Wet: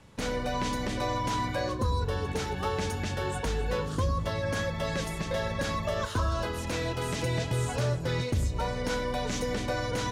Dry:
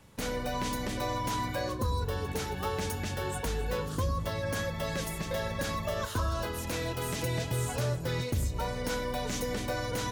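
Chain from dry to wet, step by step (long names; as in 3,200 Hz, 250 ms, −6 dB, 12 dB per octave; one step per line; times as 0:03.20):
Bessel low-pass filter 7,000 Hz, order 2
level +2.5 dB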